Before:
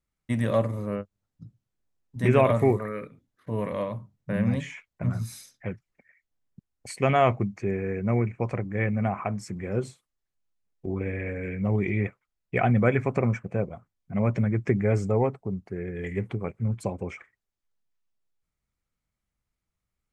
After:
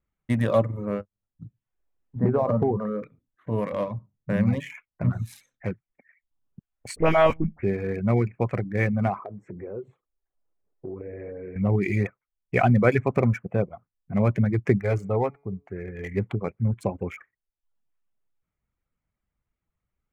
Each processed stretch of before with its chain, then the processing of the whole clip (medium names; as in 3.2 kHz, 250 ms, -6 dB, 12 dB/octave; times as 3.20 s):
2.19–3.03 s: low-pass 1.3 kHz 24 dB/octave + compression 8:1, threshold -21 dBFS + small resonant body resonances 210/470/770 Hz, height 7 dB, ringing for 55 ms
6.96–7.63 s: hum notches 60/120/180/240/300 Hz + monotone LPC vocoder at 8 kHz 160 Hz + phase dispersion highs, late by 54 ms, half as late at 1.9 kHz
9.18–11.56 s: FFT filter 230 Hz 0 dB, 400 Hz +11 dB, 1.9 kHz -3 dB, 4.4 kHz -19 dB + compression 3:1, threshold -40 dBFS
14.78–16.15 s: peaking EQ 220 Hz -5.5 dB 2.4 oct + de-hum 141.9 Hz, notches 17
whole clip: local Wiener filter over 9 samples; reverb removal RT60 0.57 s; trim +3.5 dB